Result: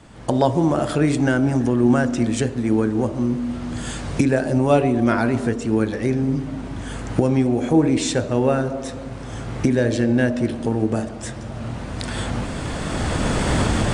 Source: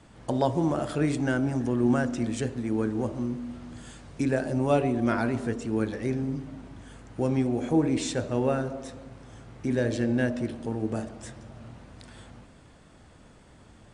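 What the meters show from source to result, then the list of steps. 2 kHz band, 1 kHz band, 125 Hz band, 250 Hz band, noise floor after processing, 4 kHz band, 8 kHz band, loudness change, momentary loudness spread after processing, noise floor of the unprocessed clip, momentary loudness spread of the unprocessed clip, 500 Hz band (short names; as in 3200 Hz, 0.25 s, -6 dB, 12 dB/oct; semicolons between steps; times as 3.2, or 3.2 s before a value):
+8.5 dB, +8.5 dB, +9.0 dB, +8.0 dB, -32 dBFS, +11.0 dB, +10.5 dB, +7.0 dB, 13 LU, -53 dBFS, 21 LU, +7.5 dB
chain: recorder AGC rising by 11 dB/s; gain +7 dB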